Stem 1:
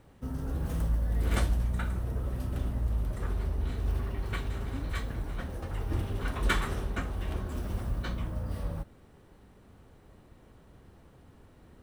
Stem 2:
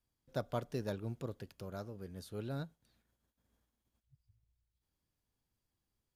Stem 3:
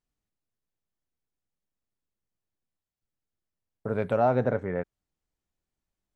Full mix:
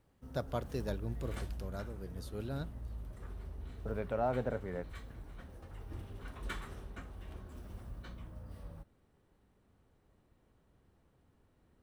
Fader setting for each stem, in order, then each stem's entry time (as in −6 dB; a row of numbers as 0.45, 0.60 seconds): −14.0, +0.5, −10.0 decibels; 0.00, 0.00, 0.00 seconds